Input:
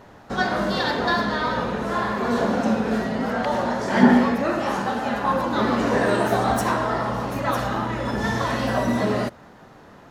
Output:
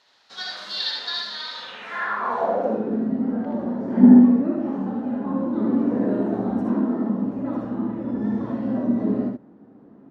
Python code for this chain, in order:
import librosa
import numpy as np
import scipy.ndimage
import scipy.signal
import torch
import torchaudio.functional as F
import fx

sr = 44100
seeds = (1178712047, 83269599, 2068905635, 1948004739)

y = fx.low_shelf_res(x, sr, hz=140.0, db=-11.5, q=3.0, at=(6.67, 7.25))
y = fx.room_early_taps(y, sr, ms=(62, 77), db=(-6.0, -4.0))
y = fx.filter_sweep_bandpass(y, sr, from_hz=4200.0, to_hz=260.0, start_s=1.58, end_s=2.99, q=2.9)
y = F.gain(torch.from_numpy(y), 4.0).numpy()